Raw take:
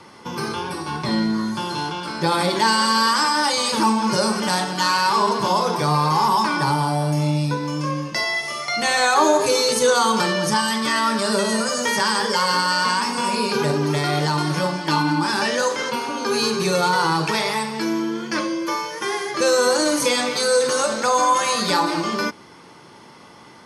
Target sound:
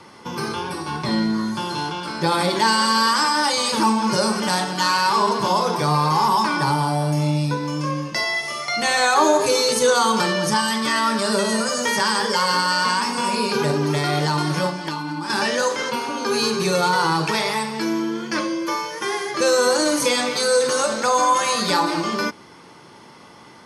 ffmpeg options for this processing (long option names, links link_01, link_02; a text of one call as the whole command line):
ffmpeg -i in.wav -filter_complex "[0:a]asettb=1/sr,asplit=3[link_01][link_02][link_03];[link_01]atrim=end=14.694[link_04];[link_02]atrim=start=14.69:end=15.3,asetpts=PTS-STARTPTS,afade=type=in:duration=0.004:curve=qsin,afade=type=out:start_time=0.606:duration=0.004:curve=qsin,acompressor=threshold=-24dB:ratio=12[link_05];[link_03]atrim=start=15.296[link_06];[link_04][link_05]acrossfade=duration=0.004:curve1=hsin:curve2=qsin[link_07];[link_07][link_06]acrossfade=duration=0.004:curve1=qsin:curve2=hsin" out.wav